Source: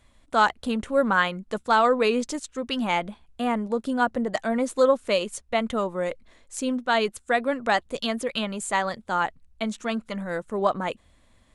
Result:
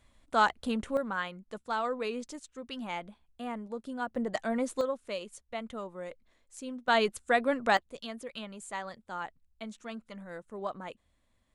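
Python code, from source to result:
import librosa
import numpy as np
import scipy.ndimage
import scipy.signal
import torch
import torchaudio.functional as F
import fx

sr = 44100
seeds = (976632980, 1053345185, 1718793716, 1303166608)

y = fx.gain(x, sr, db=fx.steps((0.0, -5.0), (0.97, -12.5), (4.16, -6.0), (4.81, -13.5), (6.88, -3.0), (7.77, -13.5)))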